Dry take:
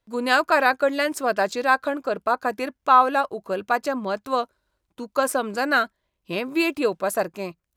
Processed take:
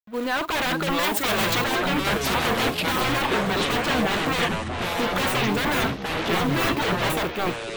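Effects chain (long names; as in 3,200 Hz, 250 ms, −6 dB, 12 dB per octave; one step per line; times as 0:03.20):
bit-depth reduction 8 bits, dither none
convolution reverb, pre-delay 41 ms, DRR 16.5 dB
hard clipping −18 dBFS, distortion −8 dB
automatic gain control gain up to 13 dB
wave folding −16.5 dBFS
log-companded quantiser 4 bits
0:01.03–0:01.64: spectral tilt +2 dB per octave
delay with pitch and tempo change per echo 501 ms, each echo −7 semitones, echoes 3
flat-topped bell 7,700 Hz −8.5 dB
one half of a high-frequency compander decoder only
level −3 dB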